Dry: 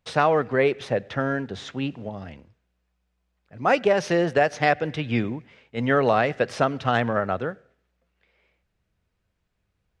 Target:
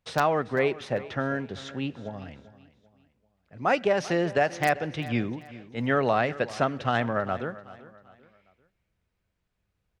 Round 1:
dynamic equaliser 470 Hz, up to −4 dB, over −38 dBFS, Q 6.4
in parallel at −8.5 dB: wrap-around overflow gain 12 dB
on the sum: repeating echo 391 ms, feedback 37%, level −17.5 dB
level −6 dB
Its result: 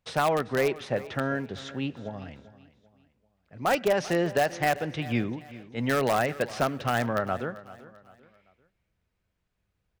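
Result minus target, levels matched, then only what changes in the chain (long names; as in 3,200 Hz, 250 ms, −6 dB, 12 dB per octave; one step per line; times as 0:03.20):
wrap-around overflow: distortion +16 dB
change: wrap-around overflow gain 6 dB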